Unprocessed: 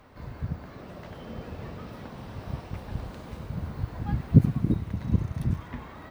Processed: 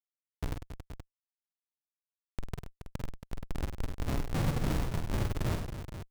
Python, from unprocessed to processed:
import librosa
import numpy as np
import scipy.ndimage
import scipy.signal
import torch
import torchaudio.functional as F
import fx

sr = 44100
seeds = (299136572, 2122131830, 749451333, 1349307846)

p1 = fx.hum_notches(x, sr, base_hz=60, count=3)
p2 = fx.schmitt(p1, sr, flips_db=-26.5)
y = p2 + fx.echo_multitap(p2, sr, ms=(42, 49, 99, 276, 475), db=(-12.5, -6.0, -10.0, -10.0, -10.5), dry=0)